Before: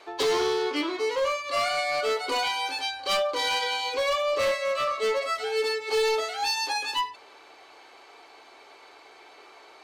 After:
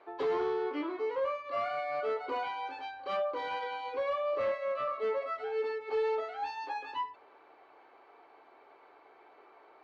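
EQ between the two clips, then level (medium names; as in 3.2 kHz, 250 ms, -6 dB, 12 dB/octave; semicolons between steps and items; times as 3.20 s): high-pass 100 Hz 6 dB/octave; low-pass 1.5 kHz 12 dB/octave; -5.5 dB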